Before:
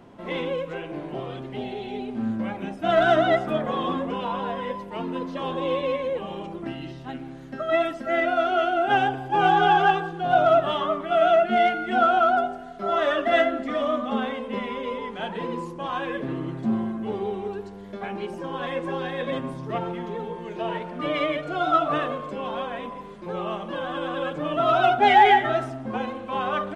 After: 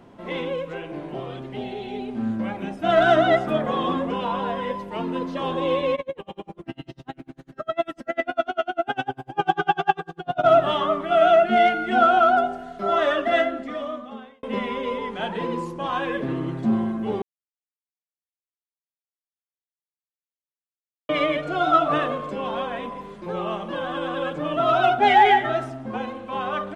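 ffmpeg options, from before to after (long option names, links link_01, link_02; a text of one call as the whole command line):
ffmpeg -i in.wav -filter_complex "[0:a]asplit=3[link_01][link_02][link_03];[link_01]afade=type=out:start_time=5.95:duration=0.02[link_04];[link_02]aeval=exprs='val(0)*pow(10,-38*(0.5-0.5*cos(2*PI*10*n/s))/20)':channel_layout=same,afade=type=in:start_time=5.95:duration=0.02,afade=type=out:start_time=10.43:duration=0.02[link_05];[link_03]afade=type=in:start_time=10.43:duration=0.02[link_06];[link_04][link_05][link_06]amix=inputs=3:normalize=0,asplit=4[link_07][link_08][link_09][link_10];[link_07]atrim=end=14.43,asetpts=PTS-STARTPTS,afade=type=out:start_time=12.91:duration=1.52[link_11];[link_08]atrim=start=14.43:end=17.22,asetpts=PTS-STARTPTS,afade=type=in:duration=0.004:curve=hsin,afade=type=out:start_time=2.786:duration=0.004:curve=hsin[link_12];[link_09]atrim=start=17.22:end=21.09,asetpts=PTS-STARTPTS,volume=0[link_13];[link_10]atrim=start=21.09,asetpts=PTS-STARTPTS,afade=type=in:duration=0.004:curve=hsin[link_14];[link_11][link_12][link_13][link_14]concat=n=4:v=0:a=1,dynaudnorm=framelen=450:gausssize=11:maxgain=3dB" out.wav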